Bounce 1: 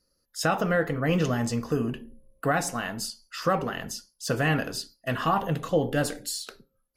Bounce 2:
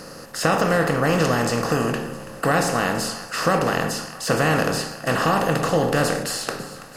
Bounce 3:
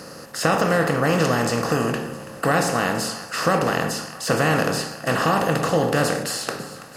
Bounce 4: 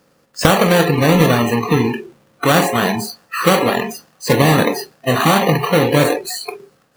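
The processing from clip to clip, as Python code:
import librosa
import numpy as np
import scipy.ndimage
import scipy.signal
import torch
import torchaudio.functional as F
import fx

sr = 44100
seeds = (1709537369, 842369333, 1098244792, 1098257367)

y1 = fx.bin_compress(x, sr, power=0.4)
y1 = fx.echo_split(y1, sr, split_hz=700.0, low_ms=120, high_ms=331, feedback_pct=52, wet_db=-15.5)
y2 = scipy.signal.sosfilt(scipy.signal.butter(2, 59.0, 'highpass', fs=sr, output='sos'), y1)
y3 = fx.halfwave_hold(y2, sr)
y3 = fx.noise_reduce_blind(y3, sr, reduce_db=26)
y3 = y3 * librosa.db_to_amplitude(3.0)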